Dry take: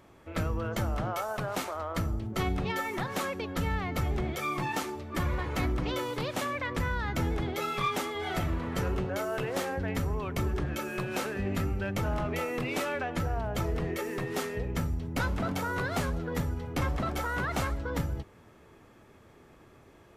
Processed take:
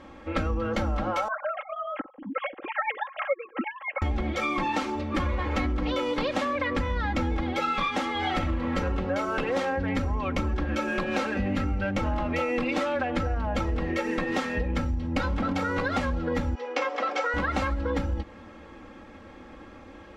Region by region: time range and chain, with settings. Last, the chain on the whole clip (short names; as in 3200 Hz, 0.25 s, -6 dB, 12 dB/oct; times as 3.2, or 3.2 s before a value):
1.28–4.02 sine-wave speech + upward expander 2.5:1, over -39 dBFS
16.55–17.34 Chebyshev band-pass 430–6800 Hz, order 3 + comb 4.1 ms, depth 35%
whole clip: LPF 4400 Hz 12 dB/oct; comb 3.7 ms, depth 88%; compressor, threshold -32 dBFS; gain +8 dB